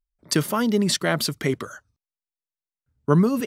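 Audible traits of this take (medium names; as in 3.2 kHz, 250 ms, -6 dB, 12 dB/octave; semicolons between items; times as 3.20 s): noise floor -94 dBFS; spectral tilt -5.0 dB/octave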